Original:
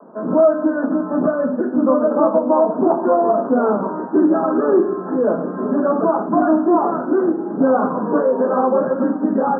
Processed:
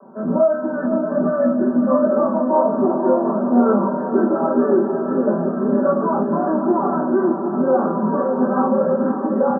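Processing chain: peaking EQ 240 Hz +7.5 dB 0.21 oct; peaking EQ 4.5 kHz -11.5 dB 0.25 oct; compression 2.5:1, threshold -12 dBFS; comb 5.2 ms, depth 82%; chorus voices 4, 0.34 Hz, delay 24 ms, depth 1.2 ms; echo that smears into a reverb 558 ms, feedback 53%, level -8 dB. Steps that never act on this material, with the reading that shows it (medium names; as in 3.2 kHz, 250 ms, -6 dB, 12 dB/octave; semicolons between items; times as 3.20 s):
peaking EQ 4.5 kHz: input has nothing above 1.5 kHz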